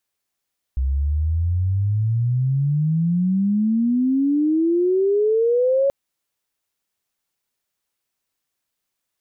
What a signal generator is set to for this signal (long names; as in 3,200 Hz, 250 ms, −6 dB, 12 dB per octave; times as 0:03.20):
glide logarithmic 64 Hz → 560 Hz −17.5 dBFS → −14.5 dBFS 5.13 s